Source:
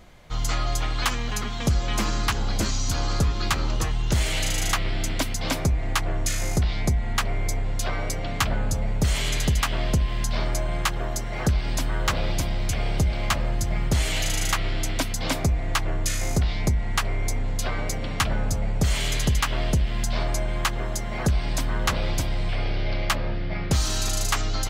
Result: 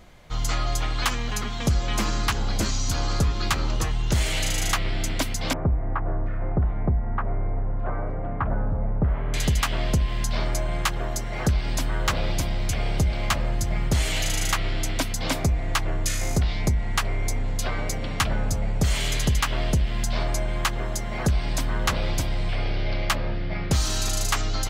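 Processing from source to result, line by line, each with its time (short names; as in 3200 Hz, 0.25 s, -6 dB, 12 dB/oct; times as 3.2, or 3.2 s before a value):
5.53–9.34 LPF 1400 Hz 24 dB/oct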